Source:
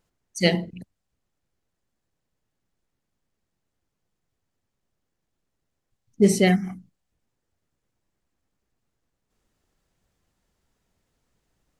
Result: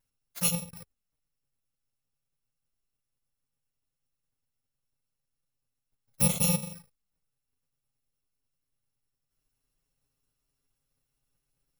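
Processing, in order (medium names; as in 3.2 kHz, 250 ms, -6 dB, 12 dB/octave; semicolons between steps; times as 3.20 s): bit-reversed sample order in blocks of 128 samples; touch-sensitive flanger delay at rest 7.5 ms, full sweep at -22 dBFS; trim -3.5 dB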